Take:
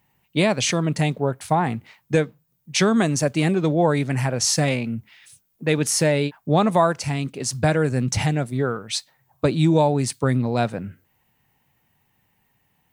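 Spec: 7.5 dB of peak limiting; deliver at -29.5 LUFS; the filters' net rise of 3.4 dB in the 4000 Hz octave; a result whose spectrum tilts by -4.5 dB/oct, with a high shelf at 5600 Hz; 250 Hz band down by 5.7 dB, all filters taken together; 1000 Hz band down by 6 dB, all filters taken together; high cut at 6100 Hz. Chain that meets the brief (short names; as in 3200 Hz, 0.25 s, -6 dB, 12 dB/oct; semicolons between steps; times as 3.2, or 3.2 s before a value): LPF 6100 Hz; bell 250 Hz -8.5 dB; bell 1000 Hz -8 dB; bell 4000 Hz +7.5 dB; high shelf 5600 Hz -3.5 dB; gain -3.5 dB; limiter -17 dBFS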